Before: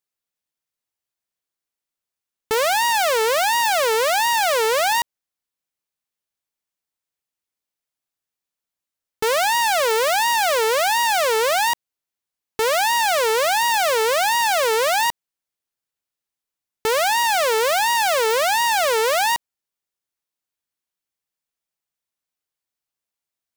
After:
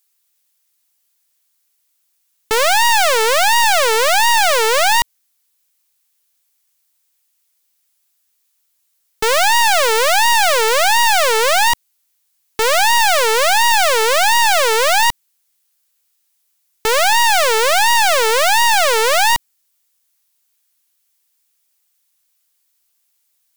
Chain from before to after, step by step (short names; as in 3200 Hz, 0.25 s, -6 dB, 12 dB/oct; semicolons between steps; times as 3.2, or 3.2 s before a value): tilt +3.5 dB/oct; sine folder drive 12 dB, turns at 2.5 dBFS; gain -6 dB